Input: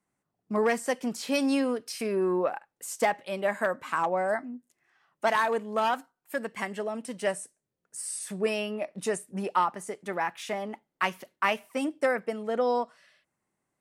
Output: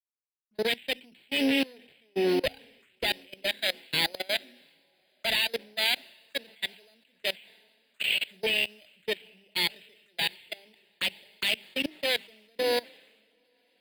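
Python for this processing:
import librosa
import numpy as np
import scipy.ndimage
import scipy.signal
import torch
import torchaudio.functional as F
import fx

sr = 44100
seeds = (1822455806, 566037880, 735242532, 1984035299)

p1 = fx.peak_eq(x, sr, hz=3200.0, db=3.0, octaves=1.9)
p2 = fx.hum_notches(p1, sr, base_hz=50, count=6)
p3 = np.repeat(p2[::8], 8)[:len(p2)]
p4 = fx.cheby_harmonics(p3, sr, harmonics=(5, 6, 8), levels_db=(-18, -10, -34), full_scale_db=-9.5)
p5 = 10.0 ** (-20.0 / 20.0) * np.tanh(p4 / 10.0 ** (-20.0 / 20.0))
p6 = p4 + (p5 * 10.0 ** (-10.5 / 20.0))
p7 = fx.env_phaser(p6, sr, low_hz=330.0, high_hz=1200.0, full_db=-26.5)
p8 = fx.weighting(p7, sr, curve='D')
p9 = np.clip(p8, -10.0 ** (-6.0 / 20.0), 10.0 ** (-6.0 / 20.0))
p10 = p9 + fx.echo_diffused(p9, sr, ms=848, feedback_pct=61, wet_db=-13.0, dry=0)
p11 = fx.level_steps(p10, sr, step_db=22)
p12 = fx.band_widen(p11, sr, depth_pct=100)
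y = p12 * 10.0 ** (-5.0 / 20.0)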